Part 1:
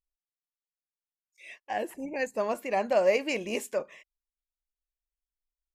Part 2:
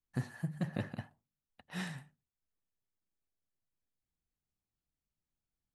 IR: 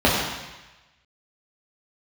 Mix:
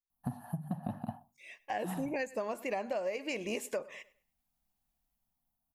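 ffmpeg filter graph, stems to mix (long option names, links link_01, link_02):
-filter_complex "[0:a]dynaudnorm=framelen=150:gausssize=9:maxgain=14dB,volume=-7dB,afade=type=in:start_time=1.61:duration=0.38:silence=0.281838,asplit=2[link_01][link_02];[link_02]volume=-22.5dB[link_03];[1:a]firequalizer=gain_entry='entry(130,0);entry(240,7);entry(420,-16);entry(710,12);entry(2000,-17);entry(2900,-8);entry(7000,-16);entry(11000,9)':delay=0.05:min_phase=1,adelay=100,volume=2.5dB[link_04];[link_03]aecho=0:1:101|202|303|404:1|0.26|0.0676|0.0176[link_05];[link_01][link_04][link_05]amix=inputs=3:normalize=0,acompressor=threshold=-32dB:ratio=12"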